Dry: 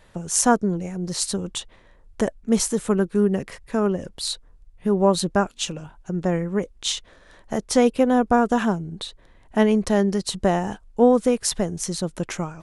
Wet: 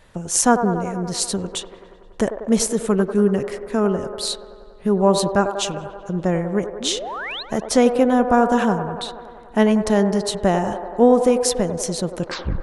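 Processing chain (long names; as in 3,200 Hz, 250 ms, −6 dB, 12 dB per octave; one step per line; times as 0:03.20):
turntable brake at the end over 0.40 s
sound drawn into the spectrogram rise, 0:06.80–0:07.43, 210–4,400 Hz −32 dBFS
delay with a band-pass on its return 95 ms, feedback 74%, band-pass 720 Hz, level −7.5 dB
level +2 dB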